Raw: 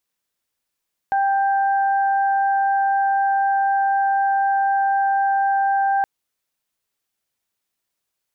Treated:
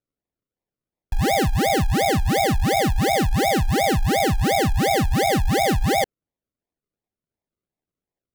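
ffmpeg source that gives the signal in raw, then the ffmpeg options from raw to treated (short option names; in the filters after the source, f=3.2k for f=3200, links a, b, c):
-f lavfi -i "aevalsrc='0.158*sin(2*PI*788*t)+0.0473*sin(2*PI*1576*t)':d=4.92:s=44100"
-af "lowpass=f=1.4k:w=0.5412,lowpass=f=1.4k:w=1.3066,acrusher=samples=42:mix=1:aa=0.000001:lfo=1:lforange=25.2:lforate=2.8"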